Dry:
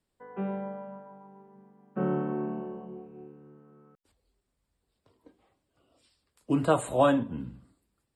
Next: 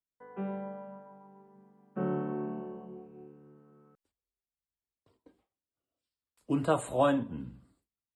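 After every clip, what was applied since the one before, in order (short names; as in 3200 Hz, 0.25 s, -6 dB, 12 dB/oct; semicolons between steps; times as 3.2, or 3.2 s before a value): gate with hold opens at -55 dBFS; gain -3.5 dB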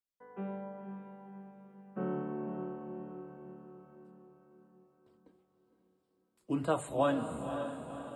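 notches 50/100/150 Hz; on a send: diffused feedback echo 0.52 s, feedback 52%, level -7.5 dB; on the sum: gain -3.5 dB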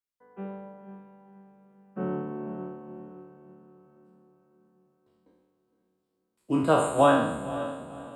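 spectral trails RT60 1.13 s; upward expander 1.5:1, over -48 dBFS; gain +8 dB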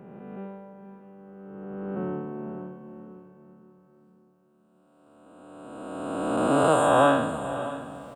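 spectral swells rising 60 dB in 2.39 s; echo 0.648 s -17 dB; gain -2 dB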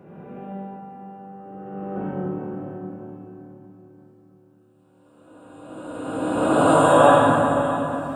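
reverb RT60 2.9 s, pre-delay 4 ms, DRR -6.5 dB; gain -2 dB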